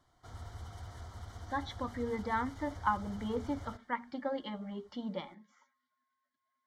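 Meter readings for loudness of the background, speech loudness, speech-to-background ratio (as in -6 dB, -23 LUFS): -48.5 LUFS, -38.0 LUFS, 10.5 dB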